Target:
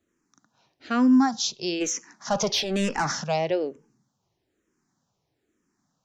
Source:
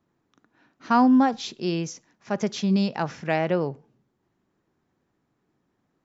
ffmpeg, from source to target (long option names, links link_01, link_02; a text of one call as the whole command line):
ffmpeg -i in.wav -filter_complex "[0:a]asplit=3[link_01][link_02][link_03];[link_01]afade=type=out:start_time=1.8:duration=0.02[link_04];[link_02]asplit=2[link_05][link_06];[link_06]highpass=frequency=720:poles=1,volume=23dB,asoftclip=type=tanh:threshold=-12dB[link_07];[link_05][link_07]amix=inputs=2:normalize=0,lowpass=frequency=1700:poles=1,volume=-6dB,afade=type=in:start_time=1.8:duration=0.02,afade=type=out:start_time=3.23:duration=0.02[link_08];[link_03]afade=type=in:start_time=3.23:duration=0.02[link_09];[link_04][link_08][link_09]amix=inputs=3:normalize=0,equalizer=frequency=6400:width_type=o:width=1.2:gain=13.5,asplit=2[link_10][link_11];[link_11]afreqshift=-1.1[link_12];[link_10][link_12]amix=inputs=2:normalize=1" out.wav